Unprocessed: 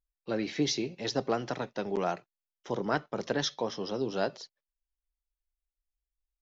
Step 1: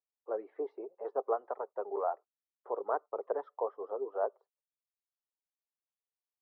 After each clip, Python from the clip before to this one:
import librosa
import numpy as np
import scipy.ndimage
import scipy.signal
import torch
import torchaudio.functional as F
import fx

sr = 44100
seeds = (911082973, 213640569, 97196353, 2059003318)

y = scipy.signal.sosfilt(scipy.signal.ellip(3, 1.0, 80, [420.0, 1200.0], 'bandpass', fs=sr, output='sos'), x)
y = fx.dereverb_blind(y, sr, rt60_s=0.71)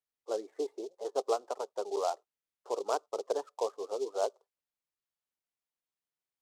y = fx.dynamic_eq(x, sr, hz=220.0, q=0.75, threshold_db=-48.0, ratio=4.0, max_db=5)
y = fx.noise_mod_delay(y, sr, seeds[0], noise_hz=4900.0, depth_ms=0.032)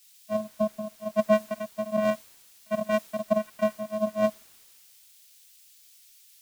y = fx.vocoder(x, sr, bands=4, carrier='square', carrier_hz=214.0)
y = fx.quant_dither(y, sr, seeds[1], bits=10, dither='triangular')
y = fx.band_widen(y, sr, depth_pct=70)
y = y * 10.0 ** (7.0 / 20.0)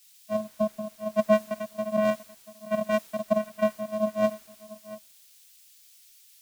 y = x + 10.0 ** (-17.5 / 20.0) * np.pad(x, (int(687 * sr / 1000.0), 0))[:len(x)]